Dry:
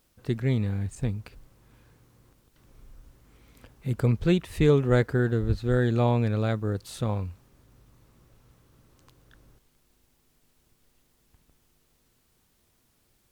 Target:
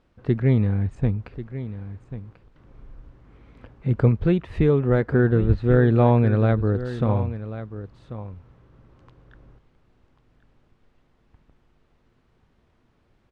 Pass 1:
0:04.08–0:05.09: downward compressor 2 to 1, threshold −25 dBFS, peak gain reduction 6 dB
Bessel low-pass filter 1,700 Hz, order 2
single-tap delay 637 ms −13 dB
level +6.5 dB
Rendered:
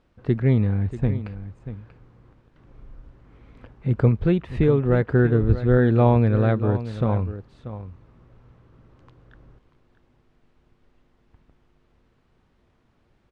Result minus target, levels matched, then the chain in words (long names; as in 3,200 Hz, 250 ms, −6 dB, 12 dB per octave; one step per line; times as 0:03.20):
echo 453 ms early
0:04.08–0:05.09: downward compressor 2 to 1, threshold −25 dBFS, peak gain reduction 6 dB
Bessel low-pass filter 1,700 Hz, order 2
single-tap delay 1,090 ms −13 dB
level +6.5 dB